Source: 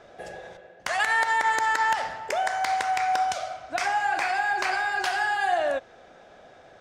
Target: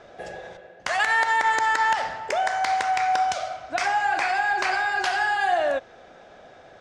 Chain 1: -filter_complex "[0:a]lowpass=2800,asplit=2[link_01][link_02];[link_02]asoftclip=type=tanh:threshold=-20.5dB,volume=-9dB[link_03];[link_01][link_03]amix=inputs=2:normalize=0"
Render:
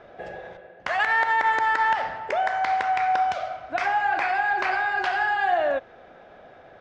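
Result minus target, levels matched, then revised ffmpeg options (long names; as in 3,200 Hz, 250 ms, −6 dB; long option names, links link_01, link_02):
8,000 Hz band −14.0 dB
-filter_complex "[0:a]lowpass=8000,asplit=2[link_01][link_02];[link_02]asoftclip=type=tanh:threshold=-20.5dB,volume=-9dB[link_03];[link_01][link_03]amix=inputs=2:normalize=0"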